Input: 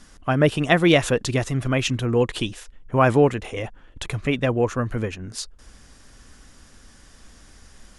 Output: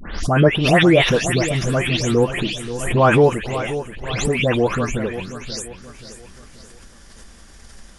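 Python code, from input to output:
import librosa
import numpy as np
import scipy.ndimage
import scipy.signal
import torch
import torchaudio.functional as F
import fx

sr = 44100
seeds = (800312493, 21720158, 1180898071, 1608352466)

y = fx.spec_delay(x, sr, highs='late', ms=234)
y = fx.echo_feedback(y, sr, ms=531, feedback_pct=41, wet_db=-12.0)
y = fx.pre_swell(y, sr, db_per_s=61.0)
y = y * librosa.db_to_amplitude(3.5)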